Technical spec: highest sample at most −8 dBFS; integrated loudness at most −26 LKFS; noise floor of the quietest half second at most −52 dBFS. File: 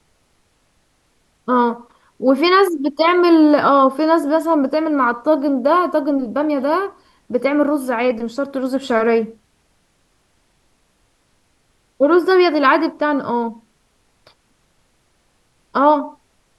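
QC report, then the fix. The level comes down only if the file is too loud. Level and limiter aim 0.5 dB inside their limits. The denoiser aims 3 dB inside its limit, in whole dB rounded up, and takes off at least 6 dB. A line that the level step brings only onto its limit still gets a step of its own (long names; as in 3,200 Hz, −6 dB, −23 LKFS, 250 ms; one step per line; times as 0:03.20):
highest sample −3.0 dBFS: out of spec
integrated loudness −16.5 LKFS: out of spec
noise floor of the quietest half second −61 dBFS: in spec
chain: level −10 dB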